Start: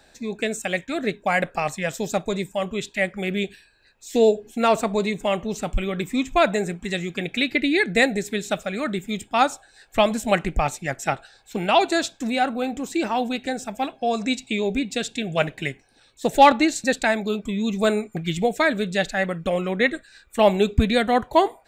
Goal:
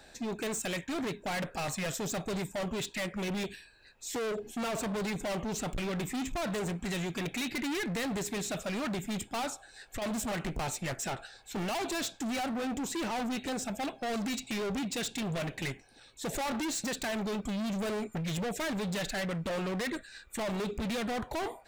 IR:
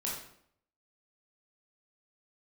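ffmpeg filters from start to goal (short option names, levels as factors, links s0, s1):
-filter_complex "[0:a]asettb=1/sr,asplit=3[s0][s1][s2];[s0]atrim=end=9.494[s3];[s1]atrim=start=9.49:end=10.02,asetpts=PTS-STARTPTS,afade=t=in:d=0.004:c=qsin,afade=t=out:st=0.526:d=0.004:c=qsin,acompressor=threshold=0.0141:ratio=8[s4];[s2]atrim=start=10.016[s5];[s3][s4]acrossfade=d=0.004:c1=hsin:c2=qsin[s6];[s6][s5]acrossfade=d=0.004:c1=qsin:c2=hsin,alimiter=limit=0.237:level=0:latency=1:release=130,volume=39.8,asoftclip=hard,volume=0.0251"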